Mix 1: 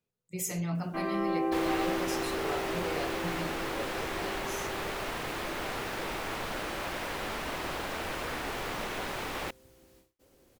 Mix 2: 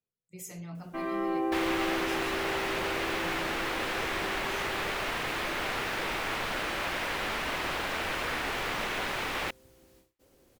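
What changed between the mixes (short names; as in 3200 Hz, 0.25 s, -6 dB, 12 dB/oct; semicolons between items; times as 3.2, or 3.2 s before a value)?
speech -9.0 dB; second sound: add bell 2300 Hz +6 dB 2.2 oct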